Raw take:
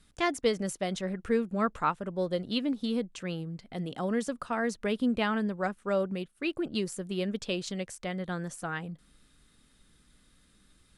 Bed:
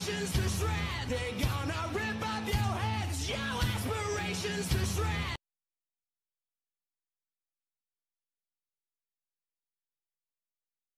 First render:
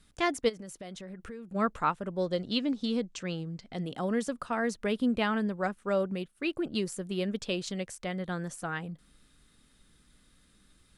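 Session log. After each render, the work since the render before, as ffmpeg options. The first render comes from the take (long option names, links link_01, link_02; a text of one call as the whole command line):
ffmpeg -i in.wav -filter_complex "[0:a]asplit=3[link_01][link_02][link_03];[link_01]afade=type=out:start_time=0.48:duration=0.02[link_04];[link_02]acompressor=threshold=-40dB:ratio=6:attack=3.2:release=140:knee=1:detection=peak,afade=type=in:start_time=0.48:duration=0.02,afade=type=out:start_time=1.54:duration=0.02[link_05];[link_03]afade=type=in:start_time=1.54:duration=0.02[link_06];[link_04][link_05][link_06]amix=inputs=3:normalize=0,asettb=1/sr,asplit=3[link_07][link_08][link_09];[link_07]atrim=end=2.204[link_10];[link_08]atrim=start=2.2:end=3.81,asetpts=PTS-STARTPTS,afade=type=in:duration=0.004:curve=qsin,afade=type=out:start_time=1.606:duration=0.004:curve=qsin,lowpass=frequency=6600:width_type=q:width=1.7[link_11];[link_09]atrim=start=3.806[link_12];[link_10][link_11]acrossfade=duration=0.004:curve1=hsin:curve2=qsin[link_13];[link_13][link_12]acrossfade=duration=0.004:curve1=qsin:curve2=hsin" out.wav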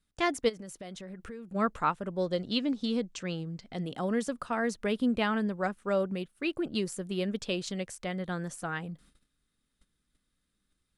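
ffmpeg -i in.wav -af "agate=range=-16dB:threshold=-57dB:ratio=16:detection=peak" out.wav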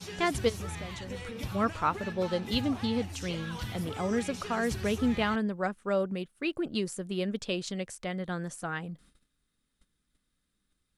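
ffmpeg -i in.wav -i bed.wav -filter_complex "[1:a]volume=-7dB[link_01];[0:a][link_01]amix=inputs=2:normalize=0" out.wav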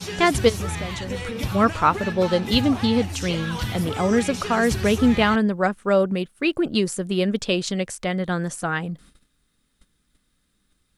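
ffmpeg -i in.wav -af "volume=10dB" out.wav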